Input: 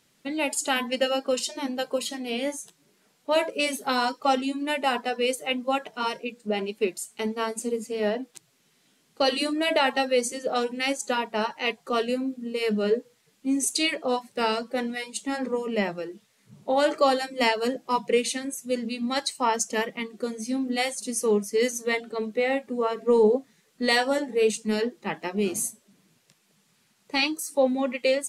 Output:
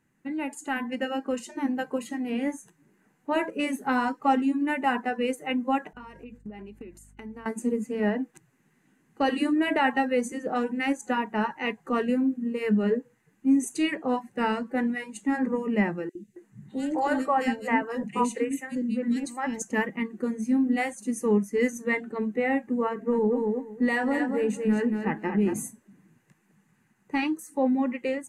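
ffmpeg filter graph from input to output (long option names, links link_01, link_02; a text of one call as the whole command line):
ffmpeg -i in.wav -filter_complex "[0:a]asettb=1/sr,asplit=3[link_01][link_02][link_03];[link_01]atrim=end=5.934[link_04];[link_02]atrim=start=5.93:end=7.46,asetpts=PTS-STARTPTS,afade=type=in:duration=0.004:curve=qsin,afade=type=out:start_time=1.526:duration=0.004:curve=qsin,agate=range=-33dB:threshold=-48dB:ratio=3:release=100:detection=peak,acompressor=threshold=-39dB:ratio=16:attack=3.2:release=140:knee=1:detection=peak,aeval=exprs='val(0)+0.001*(sin(2*PI*50*n/s)+sin(2*PI*2*50*n/s)/2+sin(2*PI*3*50*n/s)/3+sin(2*PI*4*50*n/s)/4+sin(2*PI*5*50*n/s)/5)':channel_layout=same[link_05];[link_03]atrim=start=7.456[link_06];[link_04][link_05]acrossfade=duration=0.004:curve1=hsin:curve2=qsin[link_07];[link_07][link_06]acrossfade=duration=0.004:curve1=qsin:curve2=hsin,asettb=1/sr,asplit=3[link_08][link_09][link_10];[link_08]atrim=end=16.094[link_11];[link_09]atrim=start=16.09:end=19.62,asetpts=PTS-STARTPTS,afade=type=in:duration=0.004:curve=qsin,afade=type=out:start_time=3.526:duration=0.004:curve=qsin,equalizer=frequency=7600:width=3.9:gain=4,acrossover=split=420|2500[link_12][link_13][link_14];[link_12]adelay=60[link_15];[link_13]adelay=270[link_16];[link_15][link_16][link_14]amix=inputs=3:normalize=0,atrim=end_sample=155673[link_17];[link_10]atrim=start=19.616[link_18];[link_11][link_17]acrossfade=duration=0.004:curve1=hsin:curve2=qsin[link_19];[link_19][link_18]acrossfade=duration=0.004:curve1=qsin:curve2=hsin,asettb=1/sr,asplit=3[link_20][link_21][link_22];[link_20]atrim=end=22.894[link_23];[link_21]atrim=start=22.89:end=25.54,asetpts=PTS-STARTPTS,afade=type=in:duration=0.004:curve=qsin,afade=type=out:start_time=2.646:duration=0.004:curve=qsin,equalizer=frequency=5200:width=0.39:gain=-3.5,aecho=1:1:230|460|690:0.422|0.0675|0.0108,atrim=end_sample=116865,acompressor=threshold=-22dB:ratio=2.5:attack=3.2:release=140:knee=1:detection=peak[link_24];[link_22]atrim=start=25.536[link_25];[link_23][link_24]acrossfade=duration=0.004:curve1=hsin:curve2=qsin[link_26];[link_26][link_25]acrossfade=duration=0.004:curve1=qsin:curve2=hsin,tiltshelf=frequency=1300:gain=7.5,dynaudnorm=framelen=800:gausssize=3:maxgain=7dB,superequalizer=7b=0.501:8b=0.398:11b=2:13b=0.355:14b=0.355,volume=-7.5dB" out.wav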